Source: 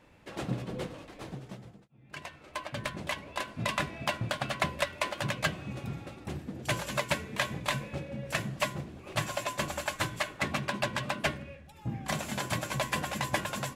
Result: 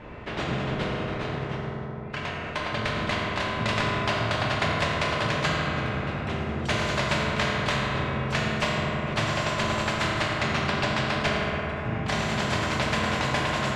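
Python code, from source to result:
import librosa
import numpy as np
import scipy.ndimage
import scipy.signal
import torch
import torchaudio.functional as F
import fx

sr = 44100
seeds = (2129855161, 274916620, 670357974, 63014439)

y = scipy.signal.sosfilt(scipy.signal.butter(2, 2600.0, 'lowpass', fs=sr, output='sos'), x)
y = fx.low_shelf(y, sr, hz=150.0, db=11.0)
y = fx.rev_fdn(y, sr, rt60_s=2.4, lf_ratio=1.3, hf_ratio=0.45, size_ms=14.0, drr_db=-4.5)
y = fx.spectral_comp(y, sr, ratio=2.0)
y = y * librosa.db_to_amplitude(-1.5)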